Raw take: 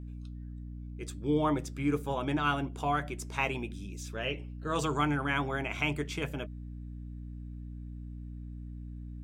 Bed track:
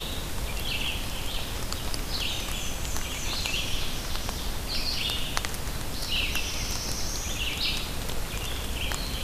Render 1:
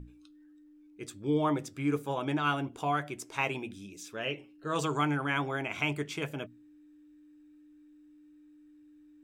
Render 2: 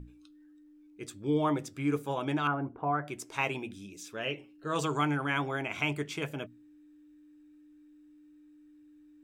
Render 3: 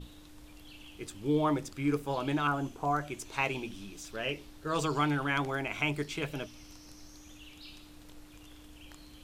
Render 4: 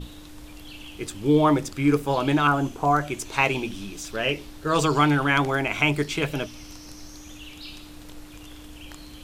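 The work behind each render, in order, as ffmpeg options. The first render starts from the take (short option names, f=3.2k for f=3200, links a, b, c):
-af "bandreject=f=60:t=h:w=6,bandreject=f=120:t=h:w=6,bandreject=f=180:t=h:w=6,bandreject=f=240:t=h:w=6"
-filter_complex "[0:a]asettb=1/sr,asplit=3[a][b][c];[a]atrim=end=2.474[d];[b]atrim=start=2.47:end=3.08,asetpts=PTS-STARTPTS,afade=t=in:d=0.004:c=qsin,afade=t=out:st=0.606:d=0.004:c=qsin,lowpass=f=1.6k:w=0.5412,lowpass=f=1.6k:w=1.3066[e];[c]atrim=start=3.076[f];[d][e]acrossfade=d=0.004:c1=hsin:c2=qsin[g];[g][f]acrossfade=d=0.004:c1=qsin:c2=hsin"
-filter_complex "[1:a]volume=-22.5dB[a];[0:a][a]amix=inputs=2:normalize=0"
-af "volume=9.5dB"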